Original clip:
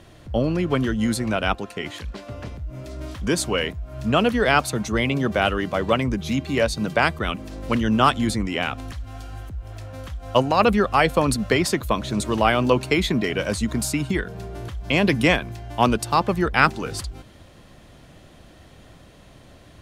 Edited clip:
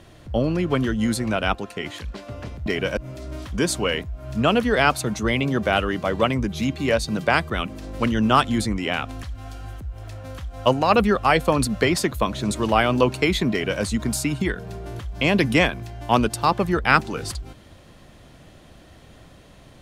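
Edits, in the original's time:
0:13.20–0:13.51: duplicate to 0:02.66

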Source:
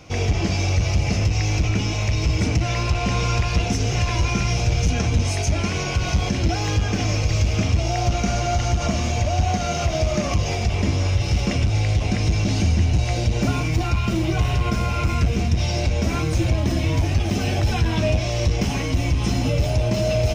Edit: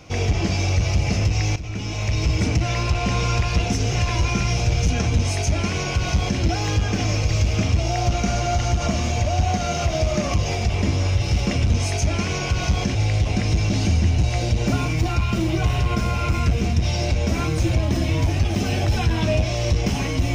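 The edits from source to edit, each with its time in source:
0:01.56–0:02.18: fade in, from −15 dB
0:05.15–0:06.40: duplicate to 0:11.70

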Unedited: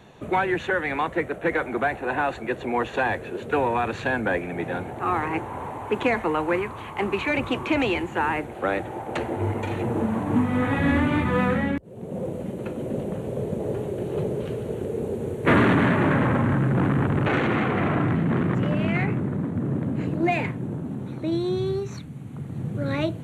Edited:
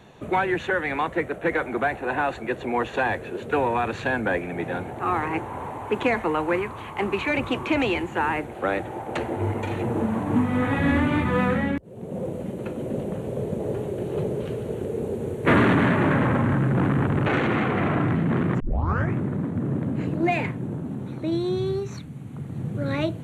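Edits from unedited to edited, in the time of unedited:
0:18.60: tape start 0.55 s

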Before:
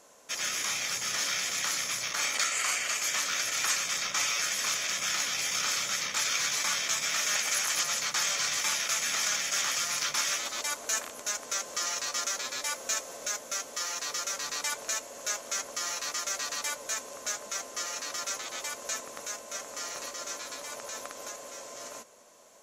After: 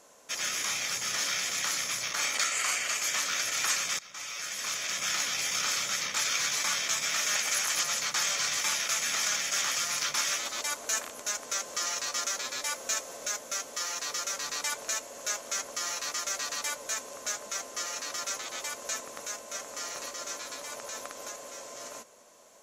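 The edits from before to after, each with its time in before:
0:03.99–0:05.09: fade in, from −20.5 dB

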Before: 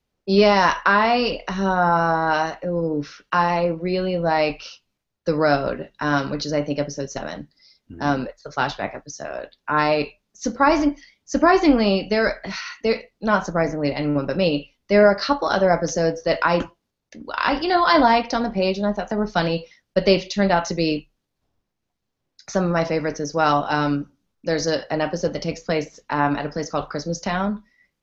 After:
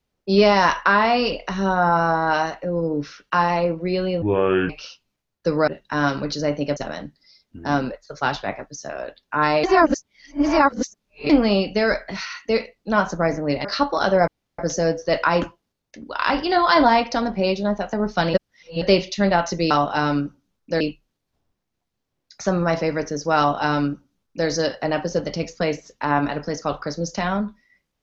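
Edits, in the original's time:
0:04.22–0:04.51: play speed 61%
0:05.49–0:05.77: remove
0:06.86–0:07.12: remove
0:09.99–0:11.65: reverse
0:14.00–0:15.14: remove
0:15.77: splice in room tone 0.31 s
0:19.52–0:20.00: reverse
0:23.46–0:24.56: duplicate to 0:20.89

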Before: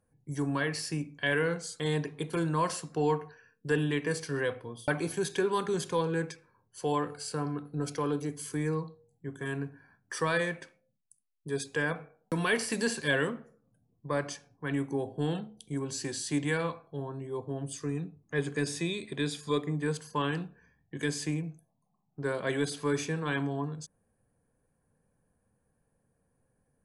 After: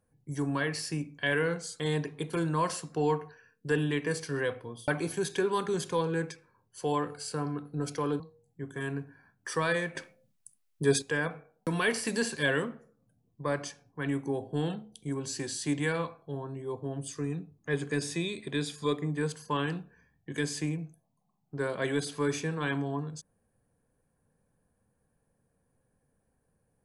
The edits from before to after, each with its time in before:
0:08.20–0:08.85: remove
0:10.60–0:11.67: clip gain +8.5 dB

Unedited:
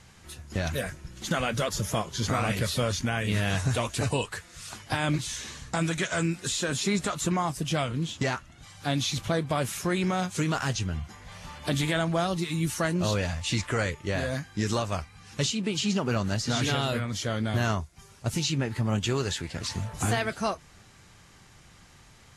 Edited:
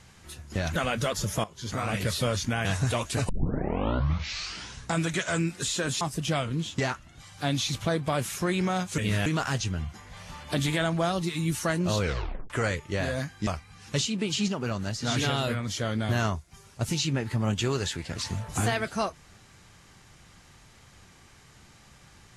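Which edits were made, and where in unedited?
0:00.76–0:01.32: remove
0:02.00–0:02.65: fade in linear, from −14 dB
0:03.21–0:03.49: move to 0:10.41
0:04.13: tape start 1.61 s
0:06.85–0:07.44: remove
0:13.16: tape stop 0.49 s
0:14.62–0:14.92: remove
0:15.93–0:16.52: clip gain −3.5 dB

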